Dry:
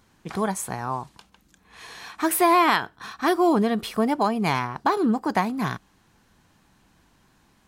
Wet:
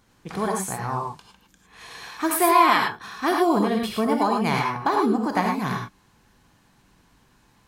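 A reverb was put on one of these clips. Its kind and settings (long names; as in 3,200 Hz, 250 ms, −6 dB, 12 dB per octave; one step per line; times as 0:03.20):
reverb whose tail is shaped and stops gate 130 ms rising, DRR 0.5 dB
level −1.5 dB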